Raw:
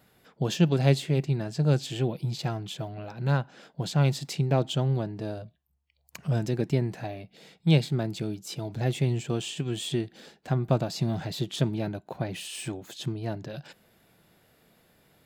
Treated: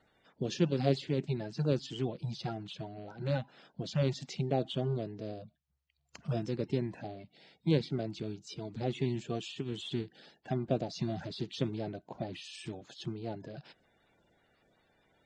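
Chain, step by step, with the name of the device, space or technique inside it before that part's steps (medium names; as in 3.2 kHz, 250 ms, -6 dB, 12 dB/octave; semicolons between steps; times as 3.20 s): clip after many re-uploads (low-pass 6.6 kHz 24 dB/octave; coarse spectral quantiser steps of 30 dB); trim -6.5 dB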